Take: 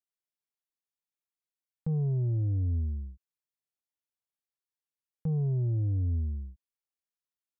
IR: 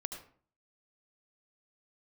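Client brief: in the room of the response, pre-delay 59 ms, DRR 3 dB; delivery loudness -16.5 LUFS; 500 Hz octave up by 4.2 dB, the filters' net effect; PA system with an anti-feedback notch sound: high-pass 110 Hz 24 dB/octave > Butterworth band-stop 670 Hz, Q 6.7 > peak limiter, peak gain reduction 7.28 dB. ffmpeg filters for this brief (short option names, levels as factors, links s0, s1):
-filter_complex "[0:a]equalizer=f=500:t=o:g=5.5,asplit=2[s0][s1];[1:a]atrim=start_sample=2205,adelay=59[s2];[s1][s2]afir=irnorm=-1:irlink=0,volume=0.75[s3];[s0][s3]amix=inputs=2:normalize=0,highpass=f=110:w=0.5412,highpass=f=110:w=1.3066,asuperstop=centerf=670:order=8:qfactor=6.7,volume=7.5,alimiter=limit=0.376:level=0:latency=1"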